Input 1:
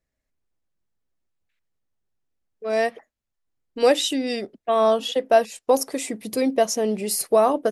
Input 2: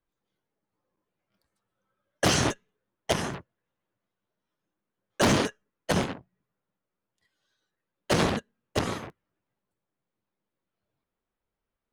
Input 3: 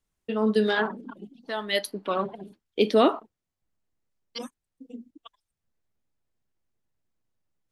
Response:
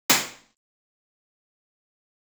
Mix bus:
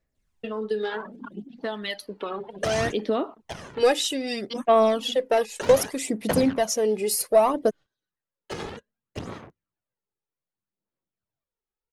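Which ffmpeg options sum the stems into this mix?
-filter_complex "[0:a]acontrast=81,volume=0.355,asplit=2[s0][s1];[1:a]adelay=400,volume=1.19[s2];[2:a]adelay=150,volume=1.12[s3];[s1]apad=whole_len=543550[s4];[s2][s4]sidechaingate=range=0.251:threshold=0.00891:ratio=16:detection=peak[s5];[s5][s3]amix=inputs=2:normalize=0,highshelf=f=9400:g=-8.5,acompressor=threshold=0.0398:ratio=6,volume=1[s6];[s0][s6]amix=inputs=2:normalize=0,aphaser=in_gain=1:out_gain=1:delay=2.4:decay=0.51:speed=0.64:type=sinusoidal"

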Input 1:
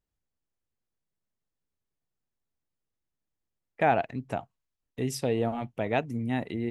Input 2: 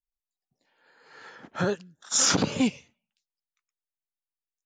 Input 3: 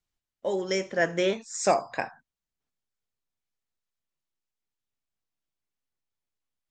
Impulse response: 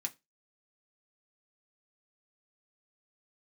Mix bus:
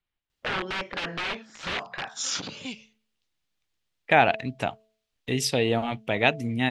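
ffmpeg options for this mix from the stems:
-filter_complex "[0:a]adelay=300,volume=1.33[s0];[1:a]adelay=50,volume=0.178[s1];[2:a]aeval=exprs='(mod(17.8*val(0)+1,2)-1)/17.8':c=same,lowpass=2000,volume=0.891[s2];[s0][s1][s2]amix=inputs=3:normalize=0,equalizer=f=3400:t=o:w=1.9:g=12.5,bandreject=f=218.8:t=h:w=4,bandreject=f=437.6:t=h:w=4,bandreject=f=656.4:t=h:w=4"

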